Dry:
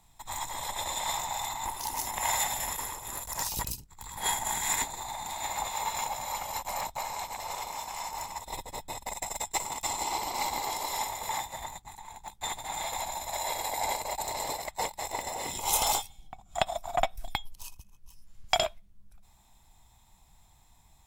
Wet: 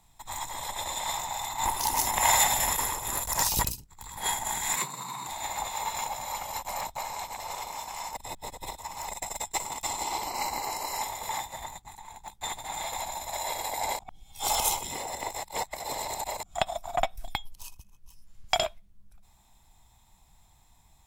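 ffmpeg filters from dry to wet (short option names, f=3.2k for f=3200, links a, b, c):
-filter_complex "[0:a]asettb=1/sr,asplit=3[a][b][c];[a]atrim=end=1.584[d];[b]atrim=start=1.58:end=3.69,asetpts=PTS-STARTPTS,afade=t=in:d=0.004:c=qsin,afade=t=out:st=2.106:d=0.004:c=qsin,acontrast=75[e];[c]atrim=start=3.686[f];[d][e]acrossfade=d=0.004:c1=hsin:c2=qsin[g];[g][f]acrossfade=d=0.004:c1=qsin:c2=hsin,asettb=1/sr,asplit=3[h][i][j];[h]atrim=end=4.764[k];[i]atrim=start=4.76:end=5.27,asetpts=PTS-STARTPTS,afade=t=in:d=0.004:c=qsin,afade=t=out:st=0.506:d=0.004:c=qsin,afreqshift=120[l];[j]atrim=start=5.266[m];[k][l]acrossfade=d=0.004:c1=hsin:c2=qsin[n];[n][m]acrossfade=d=0.004:c1=qsin:c2=hsin,asettb=1/sr,asplit=3[o][p][q];[o]atrim=end=10.274[r];[p]atrim=start=10.27:end=11.02,asetpts=PTS-STARTPTS,afade=t=in:d=0.004:c=qsin,afade=t=out:st=0.746:d=0.004:c=qsin,asuperstop=centerf=3500:order=8:qfactor=5.2[s];[q]atrim=start=11.016[t];[r][s]acrossfade=d=0.004:c1=hsin:c2=qsin[u];[u][t]acrossfade=d=0.004:c1=qsin:c2=hsin,asplit=5[v][w][x][y][z];[v]atrim=end=8.152[aa];[w]atrim=start=8.148:end=9.082,asetpts=PTS-STARTPTS,areverse[ab];[x]atrim=start=9.078:end=13.992[ac];[y]atrim=start=13.988:end=16.432,asetpts=PTS-STARTPTS,areverse[ad];[z]atrim=start=16.428[ae];[aa][ab]acrossfade=d=0.004:c1=hsin:c2=hsin[af];[af][ac]acrossfade=d=0.004:c1=hsin:c2=hsin[ag];[ag][ad]acrossfade=d=0.004:c1=hsin:c2=hsin[ah];[ah][ae]acrossfade=d=0.004:c1=hsin:c2=hsin"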